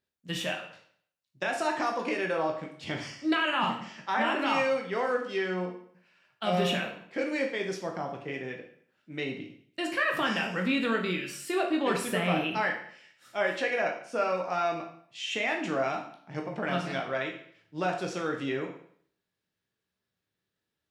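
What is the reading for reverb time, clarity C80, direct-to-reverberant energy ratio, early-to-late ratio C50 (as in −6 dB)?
0.60 s, 10.5 dB, 1.0 dB, 7.0 dB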